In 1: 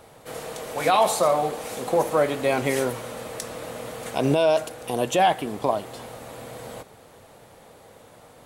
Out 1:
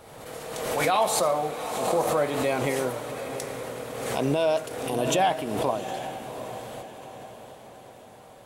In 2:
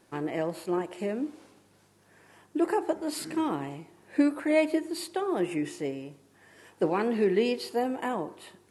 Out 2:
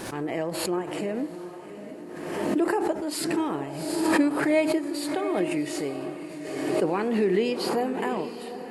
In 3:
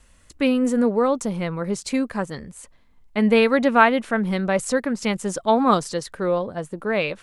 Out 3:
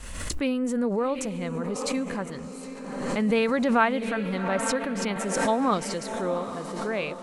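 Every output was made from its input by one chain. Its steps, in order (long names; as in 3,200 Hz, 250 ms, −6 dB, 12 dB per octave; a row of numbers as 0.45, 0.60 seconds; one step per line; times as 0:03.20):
feedback delay with all-pass diffusion 766 ms, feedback 48%, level −10 dB
background raised ahead of every attack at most 37 dB per second
loudness normalisation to −27 LKFS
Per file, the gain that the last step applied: −4.0, +0.5, −7.0 decibels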